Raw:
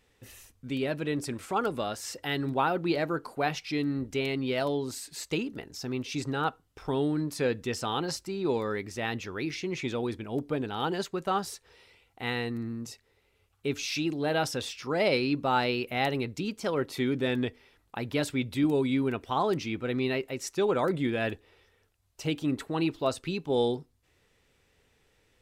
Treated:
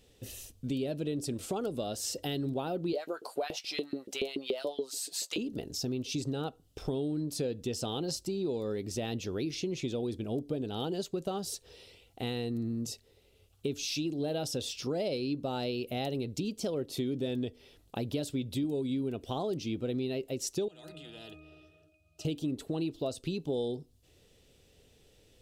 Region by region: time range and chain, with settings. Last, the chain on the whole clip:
2.93–5.38 doubler 15 ms -11.5 dB + LFO high-pass saw up 7 Hz 330–2200 Hz
20.68–22.25 RIAA curve recording + octave resonator D#, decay 0.49 s + spectral compressor 4:1
whole clip: band shelf 1400 Hz -11 dB; compressor 5:1, threshold -37 dBFS; dynamic EQ 1900 Hz, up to -4 dB, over -57 dBFS, Q 0.81; gain +6 dB

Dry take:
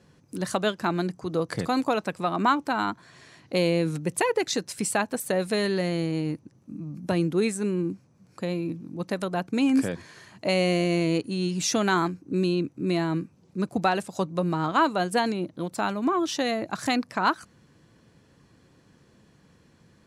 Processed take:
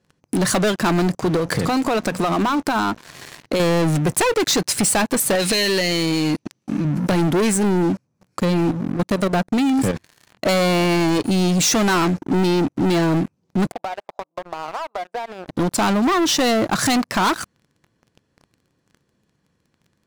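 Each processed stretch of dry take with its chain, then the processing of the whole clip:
1.36–3.6 notches 60/120/180/240 Hz + compressor 5:1, threshold -30 dBFS
5.35–6.85 weighting filter D + compressor, threshold -26 dBFS
8.43–10.47 low shelf 200 Hz +4.5 dB + level quantiser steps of 14 dB
13.72–15.48 ladder band-pass 820 Hz, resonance 45% + compressor 12:1, threshold -41 dBFS
whole clip: sample leveller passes 5; compressor, threshold -16 dBFS

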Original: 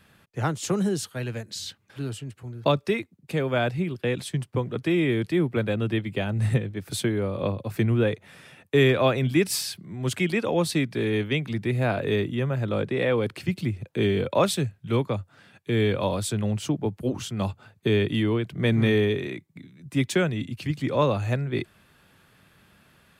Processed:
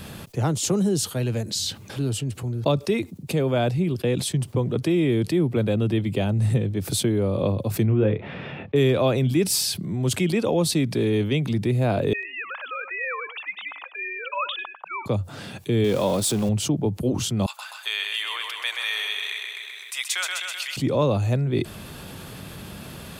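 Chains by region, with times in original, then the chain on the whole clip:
7.86–8.76 LPF 2800 Hz 24 dB/oct + doubler 28 ms -7 dB
12.13–15.06 sine-wave speech + HPF 1100 Hz 24 dB/oct + echo 98 ms -18 dB
15.84–16.49 zero-crossing step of -32.5 dBFS + bell 91 Hz -11 dB 0.96 oct
17.46–20.77 inverse Chebyshev high-pass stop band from 250 Hz, stop band 70 dB + feedback echo 0.128 s, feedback 54%, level -6 dB
whole clip: bell 1700 Hz -9.5 dB 1.4 oct; fast leveller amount 50%

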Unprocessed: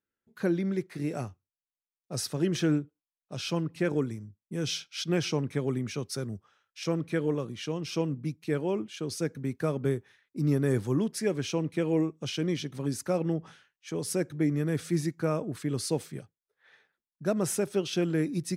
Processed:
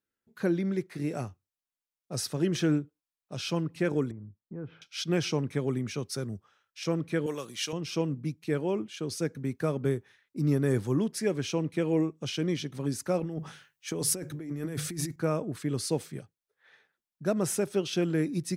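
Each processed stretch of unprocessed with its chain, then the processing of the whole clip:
4.11–4.82 LPF 1400 Hz 24 dB/oct + compressor 2:1, threshold -40 dBFS
7.26–7.73 tilt +4 dB/oct + upward compressor, threshold -40 dBFS
13.19–15.16 notches 50/100/150 Hz + negative-ratio compressor -34 dBFS + high shelf 9100 Hz +8.5 dB
whole clip: dry

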